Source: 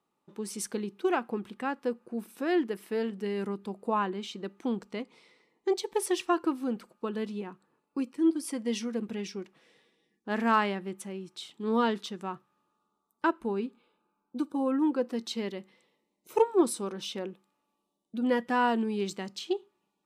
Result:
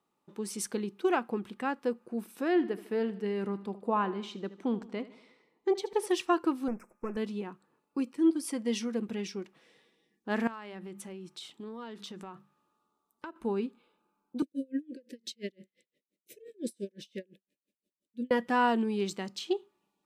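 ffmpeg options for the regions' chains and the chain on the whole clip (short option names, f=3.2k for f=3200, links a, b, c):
-filter_complex "[0:a]asettb=1/sr,asplit=3[a][b][c];[a]atrim=end=2.484[d];[b]atrim=start=2.48:end=6.12,asetpts=PTS-STARTPTS,afade=t=in:d=0.004:c=qsin,afade=t=out:st=3.636:d=0.004:c=qsin,highshelf=f=3.6k:g=-8.5,aecho=1:1:76|152|228|304:0.15|0.0748|0.0374|0.0187,atrim=end_sample=160524[e];[c]atrim=start=6.116[f];[d][e]acrossfade=d=0.004:c1=hsin:c2=qsin[g];[g][f]acrossfade=d=0.004:c1=qsin:c2=hsin,asettb=1/sr,asplit=3[h][i][j];[h]atrim=end=6.684[k];[i]atrim=start=6.68:end=7.17,asetpts=PTS-STARTPTS,afade=t=in:d=0.004:c=qsin,afade=t=out:st=0.486:d=0.004:c=qsin,aeval=exprs='if(lt(val(0),0),0.447*val(0),val(0))':c=same,asuperstop=centerf=3700:order=20:qfactor=1.5[l];[j]atrim=start=7.166[m];[k][l]acrossfade=d=0.004:c1=hsin:c2=qsin[n];[n][m]acrossfade=d=0.004:c1=qsin:c2=hsin,asettb=1/sr,asplit=3[o][p][q];[o]atrim=end=10.474[r];[p]atrim=start=10.47:end=13.36,asetpts=PTS-STARTPTS,afade=t=in:d=0.004:c=qsin,afade=t=out:st=2.886:d=0.004:c=qsin,bandreject=f=50:t=h:w=6,bandreject=f=100:t=h:w=6,bandreject=f=150:t=h:w=6,bandreject=f=200:t=h:w=6,acompressor=threshold=-39dB:ratio=8:attack=3.2:release=140:knee=1:detection=peak[s];[q]atrim=start=13.356[t];[r][s]acrossfade=d=0.004:c1=hsin:c2=qsin[u];[u][t]acrossfade=d=0.004:c1=qsin:c2=hsin,asettb=1/sr,asplit=3[v][w][x];[v]atrim=end=14.424[y];[w]atrim=start=14.42:end=18.31,asetpts=PTS-STARTPTS,afade=t=in:d=0.004:c=qsin,afade=t=out:st=3.886:d=0.004:c=qsin,asuperstop=centerf=1000:order=20:qfactor=1,aeval=exprs='val(0)*pow(10,-37*(0.5-0.5*cos(2*PI*5.8*n/s))/20)':c=same[z];[x]atrim=start=18.306[aa];[y][z]acrossfade=d=0.004:c1=hsin:c2=qsin[ab];[ab][aa]acrossfade=d=0.004:c1=qsin:c2=hsin"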